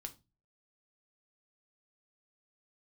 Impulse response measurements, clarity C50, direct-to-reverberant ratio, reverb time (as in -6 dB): 17.5 dB, 5.5 dB, 0.25 s